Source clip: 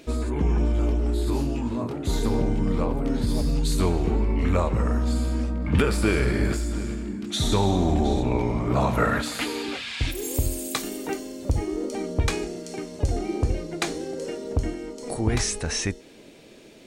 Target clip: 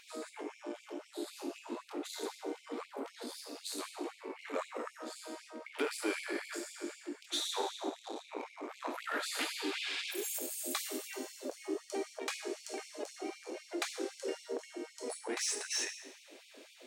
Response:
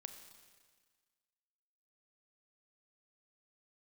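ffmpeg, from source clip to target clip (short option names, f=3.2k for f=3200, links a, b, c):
-filter_complex "[0:a]asplit=3[a][b][c];[a]afade=t=out:st=7.88:d=0.02[d];[b]asubboost=boost=5:cutoff=140,afade=t=in:st=7.88:d=0.02,afade=t=out:st=9.13:d=0.02[e];[c]afade=t=in:st=9.13:d=0.02[f];[d][e][f]amix=inputs=3:normalize=0,asplit=2[g][h];[h]acompressor=threshold=-31dB:ratio=6,volume=-2dB[i];[g][i]amix=inputs=2:normalize=0,asoftclip=type=tanh:threshold=-16.5dB[j];[1:a]atrim=start_sample=2205,asetrate=70560,aresample=44100[k];[j][k]afir=irnorm=-1:irlink=0,afftfilt=real='re*gte(b*sr/1024,230*pow(2200/230,0.5+0.5*sin(2*PI*3.9*pts/sr)))':imag='im*gte(b*sr/1024,230*pow(2200/230,0.5+0.5*sin(2*PI*3.9*pts/sr)))':win_size=1024:overlap=0.75,volume=1dB"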